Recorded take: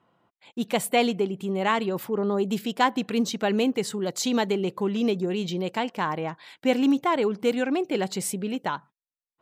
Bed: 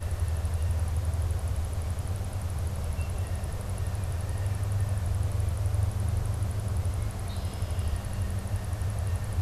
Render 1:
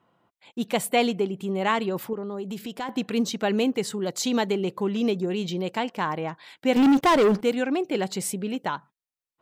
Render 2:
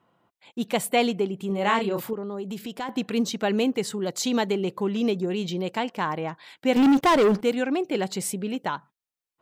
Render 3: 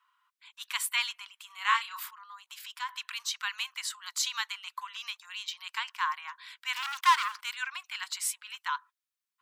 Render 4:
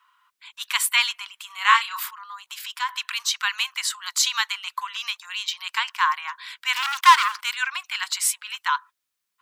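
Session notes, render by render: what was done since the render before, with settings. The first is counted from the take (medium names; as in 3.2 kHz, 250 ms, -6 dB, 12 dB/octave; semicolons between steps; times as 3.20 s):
2.13–2.89 s: compression 3:1, threshold -31 dBFS; 6.76–7.41 s: waveshaping leveller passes 3
1.47–2.11 s: doubling 30 ms -4.5 dB
Chebyshev high-pass 1 kHz, order 6
trim +9.5 dB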